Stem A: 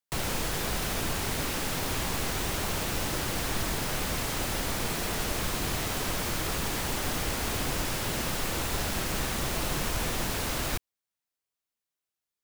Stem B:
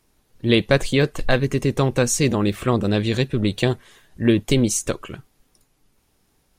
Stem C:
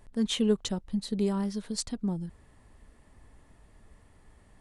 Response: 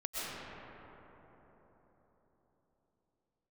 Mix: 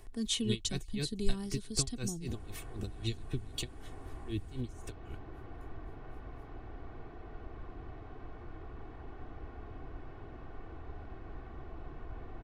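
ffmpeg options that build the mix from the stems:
-filter_complex "[0:a]lowpass=1200,aemphasis=mode=reproduction:type=50fm,adelay=2150,volume=-14dB[link_01];[1:a]acompressor=threshold=-27dB:ratio=2.5,aeval=exprs='val(0)*pow(10,-32*(0.5-0.5*cos(2*PI*3.9*n/s))/20)':channel_layout=same,volume=-0.5dB,afade=type=out:start_time=4.42:duration=0.4:silence=0.298538[link_02];[2:a]volume=0.5dB[link_03];[link_01][link_02][link_03]amix=inputs=3:normalize=0,aecho=1:1:2.7:0.61,acrossover=split=220|3000[link_04][link_05][link_06];[link_05]acompressor=threshold=-52dB:ratio=2.5[link_07];[link_04][link_07][link_06]amix=inputs=3:normalize=0"

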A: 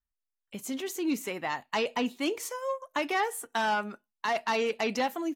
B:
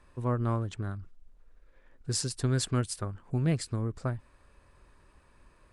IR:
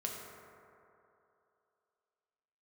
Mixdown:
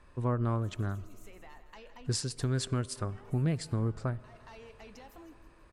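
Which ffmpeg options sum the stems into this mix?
-filter_complex "[0:a]alimiter=level_in=3.5dB:limit=-24dB:level=0:latency=1:release=32,volume=-3.5dB,acompressor=threshold=-39dB:ratio=6,volume=-11.5dB,asplit=3[link_01][link_02][link_03];[link_02]volume=-14.5dB[link_04];[link_03]volume=-12.5dB[link_05];[1:a]highshelf=frequency=9900:gain=-9.5,volume=1dB,asplit=3[link_06][link_07][link_08];[link_07]volume=-19.5dB[link_09];[link_08]apad=whole_len=236008[link_10];[link_01][link_10]sidechaincompress=threshold=-47dB:ratio=8:attack=16:release=264[link_11];[2:a]atrim=start_sample=2205[link_12];[link_04][link_09]amix=inputs=2:normalize=0[link_13];[link_13][link_12]afir=irnorm=-1:irlink=0[link_14];[link_05]aecho=0:1:162|324|486|648|810|972|1134:1|0.47|0.221|0.104|0.0488|0.0229|0.0108[link_15];[link_11][link_06][link_14][link_15]amix=inputs=4:normalize=0,alimiter=limit=-20.5dB:level=0:latency=1:release=240"

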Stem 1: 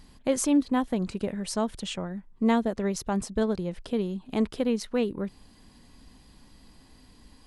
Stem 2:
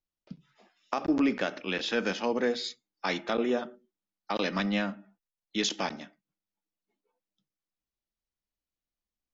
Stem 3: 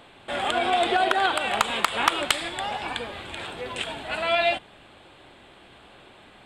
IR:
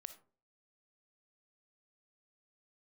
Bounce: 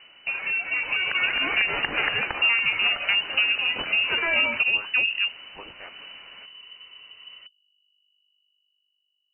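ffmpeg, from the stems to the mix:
-filter_complex "[0:a]acontrast=57,bandreject=frequency=60:width_type=h:width=6,bandreject=frequency=120:width_type=h:width=6,bandreject=frequency=180:width_type=h:width=6,bandreject=frequency=240:width_type=h:width=6,bandreject=frequency=300:width_type=h:width=6,bandreject=frequency=360:width_type=h:width=6,bandreject=frequency=420:width_type=h:width=6,bandreject=frequency=480:width_type=h:width=6,bandreject=frequency=540:width_type=h:width=6,volume=-6dB[link_01];[1:a]aderivative,aeval=exprs='val(0)+0.000224*(sin(2*PI*50*n/s)+sin(2*PI*2*50*n/s)/2+sin(2*PI*3*50*n/s)/3+sin(2*PI*4*50*n/s)/4+sin(2*PI*5*50*n/s)/5)':channel_layout=same,volume=-1.5dB[link_02];[2:a]alimiter=limit=-16.5dB:level=0:latency=1:release=71,volume=-4.5dB[link_03];[link_01][link_03]amix=inputs=2:normalize=0,acompressor=threshold=-25dB:ratio=6,volume=0dB[link_04];[link_02][link_04]amix=inputs=2:normalize=0,dynaudnorm=framelen=180:gausssize=11:maxgain=7dB,lowpass=frequency=2600:width_type=q:width=0.5098,lowpass=frequency=2600:width_type=q:width=0.6013,lowpass=frequency=2600:width_type=q:width=0.9,lowpass=frequency=2600:width_type=q:width=2.563,afreqshift=-3000"

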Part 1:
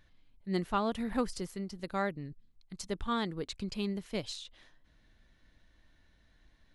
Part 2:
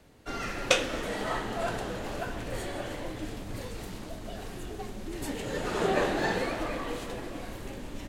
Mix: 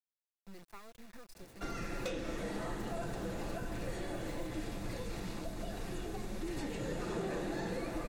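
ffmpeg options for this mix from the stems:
ffmpeg -i stem1.wav -i stem2.wav -filter_complex "[0:a]acompressor=threshold=-37dB:ratio=4,acrusher=bits=5:dc=4:mix=0:aa=0.000001,volume=-9dB[link_01];[1:a]acrossover=split=6600[link_02][link_03];[link_03]acompressor=threshold=-56dB:ratio=4:attack=1:release=60[link_04];[link_02][link_04]amix=inputs=2:normalize=0,asoftclip=type=tanh:threshold=-21.5dB,adelay=1350,volume=0.5dB[link_05];[link_01][link_05]amix=inputs=2:normalize=0,bandreject=frequency=3100:width=12,aecho=1:1:5.9:0.35,acrossover=split=410|6700[link_06][link_07][link_08];[link_06]acompressor=threshold=-37dB:ratio=4[link_09];[link_07]acompressor=threshold=-45dB:ratio=4[link_10];[link_08]acompressor=threshold=-57dB:ratio=4[link_11];[link_09][link_10][link_11]amix=inputs=3:normalize=0" out.wav

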